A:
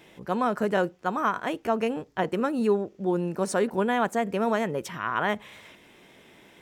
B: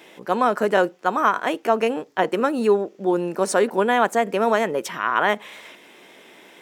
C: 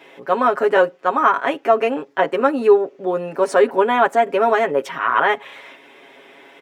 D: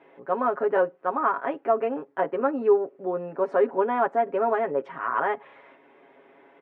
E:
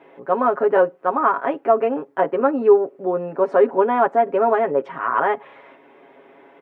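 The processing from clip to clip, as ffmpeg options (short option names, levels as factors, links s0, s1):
-af "highpass=290,volume=2.24"
-af "bass=f=250:g=-6,treble=f=4000:g=-12,aecho=1:1:7.3:0.83,volume=1.19"
-af "lowpass=1400,volume=0.447"
-af "equalizer=f=1800:w=1.5:g=-2,volume=2.11"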